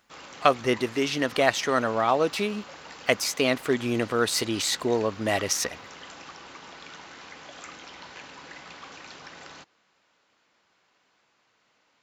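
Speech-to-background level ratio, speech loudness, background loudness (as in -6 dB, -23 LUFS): 17.5 dB, -25.5 LUFS, -43.0 LUFS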